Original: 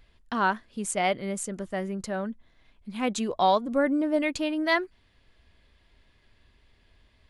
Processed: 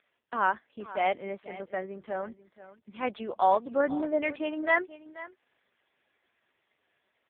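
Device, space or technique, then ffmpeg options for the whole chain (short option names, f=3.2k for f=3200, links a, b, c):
satellite phone: -af "highpass=380,lowpass=3.1k,aecho=1:1:484:0.15" -ar 8000 -c:a libopencore_amrnb -b:a 4750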